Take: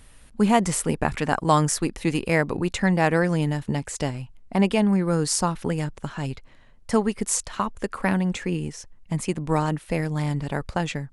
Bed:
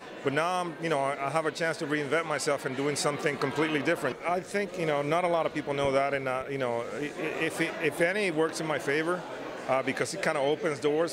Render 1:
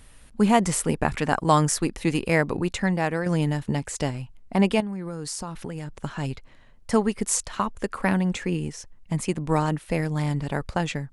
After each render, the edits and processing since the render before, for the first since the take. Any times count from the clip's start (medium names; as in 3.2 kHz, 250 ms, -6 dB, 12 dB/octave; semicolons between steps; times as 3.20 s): 2.54–3.26 s: fade out, to -7.5 dB; 4.80–5.92 s: compression, threshold -29 dBFS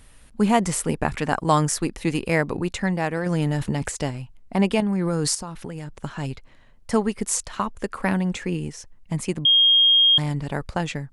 3.17–3.92 s: transient shaper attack +1 dB, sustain +11 dB; 4.73–5.35 s: level flattener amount 70%; 9.45–10.18 s: bleep 3.24 kHz -12.5 dBFS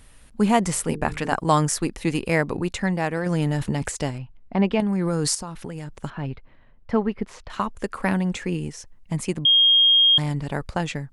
0.72–1.35 s: hum notches 50/100/150/200/250/300/350/400/450 Hz; 4.18–4.80 s: distance through air 200 m; 6.10–7.50 s: distance through air 330 m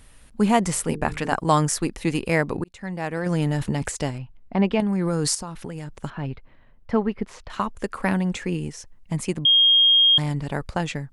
2.64–3.27 s: fade in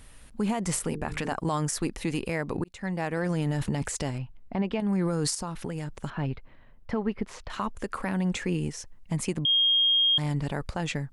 compression 4:1, threshold -22 dBFS, peak gain reduction 8.5 dB; peak limiter -18 dBFS, peak gain reduction 9 dB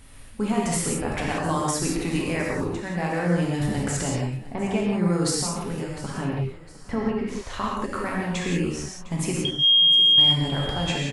feedback delay 707 ms, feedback 39%, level -18 dB; gated-style reverb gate 210 ms flat, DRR -3.5 dB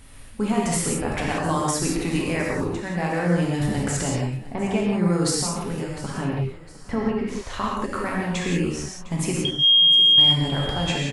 trim +1.5 dB